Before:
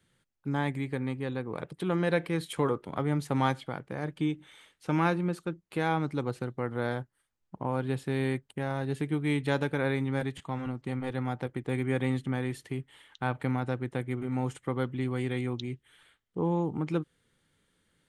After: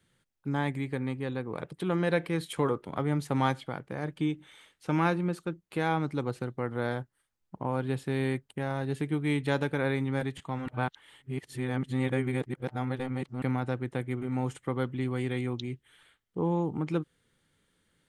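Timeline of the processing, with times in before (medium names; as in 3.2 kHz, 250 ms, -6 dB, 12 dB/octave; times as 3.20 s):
10.68–13.42 s: reverse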